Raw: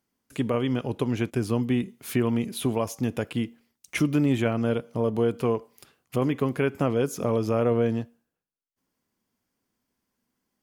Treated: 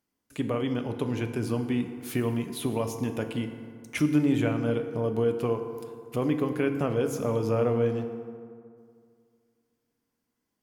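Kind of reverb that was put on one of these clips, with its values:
feedback delay network reverb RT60 2.2 s, low-frequency decay 1.05×, high-frequency decay 0.5×, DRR 6.5 dB
level −3.5 dB

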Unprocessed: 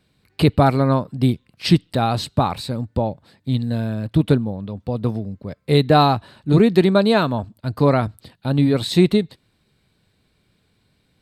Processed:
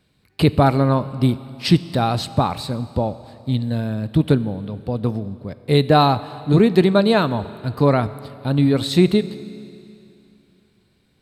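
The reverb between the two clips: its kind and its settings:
four-comb reverb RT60 2.8 s, combs from 29 ms, DRR 15.5 dB

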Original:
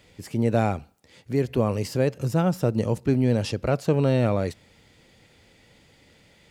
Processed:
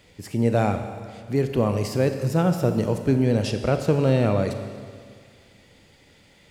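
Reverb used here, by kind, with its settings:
four-comb reverb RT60 2 s, combs from 30 ms, DRR 7 dB
level +1 dB

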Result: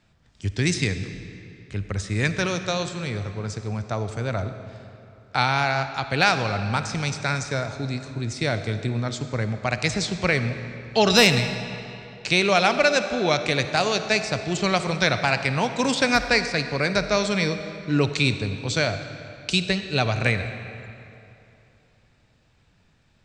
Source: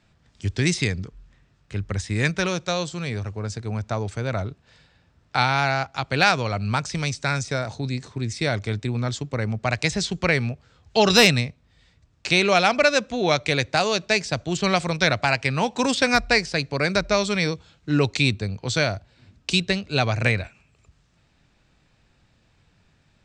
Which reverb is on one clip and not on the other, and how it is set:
comb and all-pass reverb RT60 2.9 s, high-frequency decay 0.75×, pre-delay 15 ms, DRR 9 dB
level −1 dB

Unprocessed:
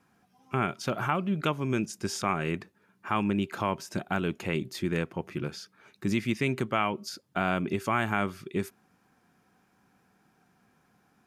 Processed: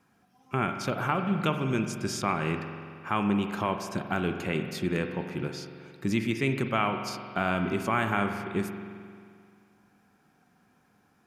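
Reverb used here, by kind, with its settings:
spring reverb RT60 2.2 s, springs 44 ms, chirp 50 ms, DRR 6 dB

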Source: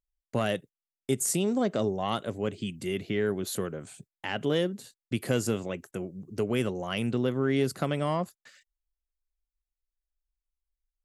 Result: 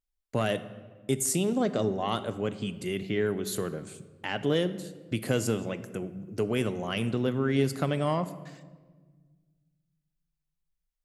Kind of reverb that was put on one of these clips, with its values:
rectangular room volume 1,400 cubic metres, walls mixed, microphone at 0.46 metres

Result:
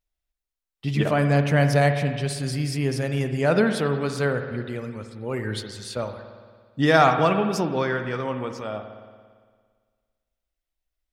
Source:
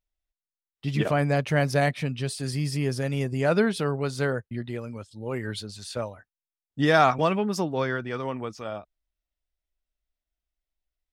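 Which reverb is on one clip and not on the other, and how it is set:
spring reverb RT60 1.7 s, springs 56 ms, chirp 40 ms, DRR 7 dB
level +2 dB

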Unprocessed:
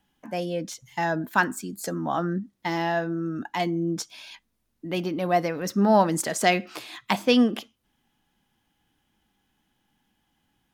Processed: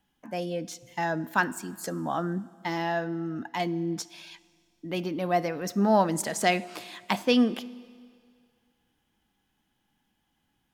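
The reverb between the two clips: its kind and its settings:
four-comb reverb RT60 2.1 s, combs from 25 ms, DRR 19 dB
level −3 dB

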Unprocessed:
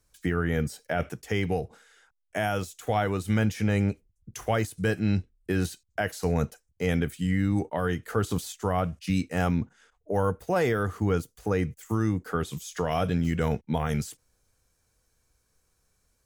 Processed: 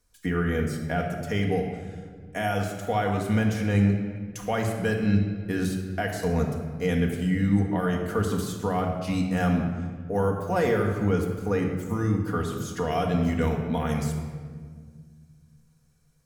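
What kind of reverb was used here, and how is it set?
rectangular room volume 2,400 cubic metres, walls mixed, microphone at 1.8 metres
level −2 dB

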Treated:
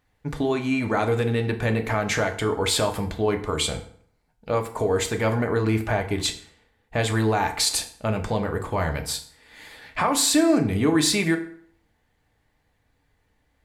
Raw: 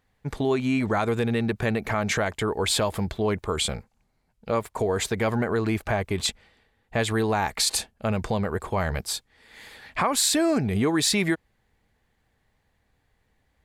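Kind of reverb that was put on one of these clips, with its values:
feedback delay network reverb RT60 0.58 s, low-frequency decay 1×, high-frequency decay 0.75×, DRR 4.5 dB

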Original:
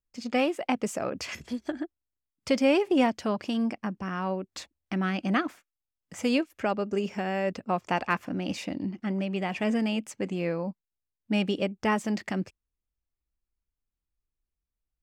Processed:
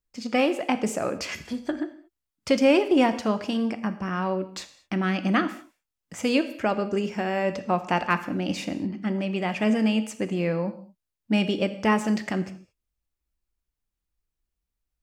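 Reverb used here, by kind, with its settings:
reverb whose tail is shaped and stops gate 250 ms falling, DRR 9.5 dB
level +3 dB

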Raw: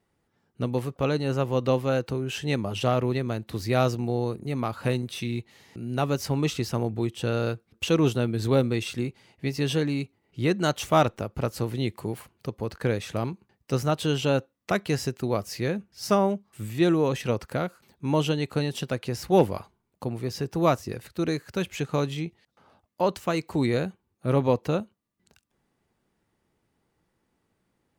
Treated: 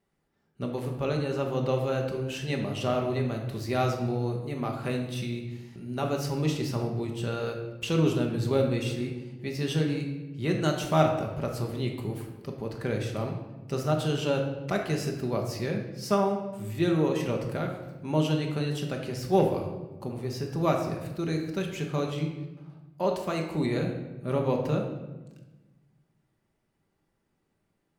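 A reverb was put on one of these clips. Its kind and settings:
rectangular room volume 630 cubic metres, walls mixed, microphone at 1.2 metres
level −5.5 dB

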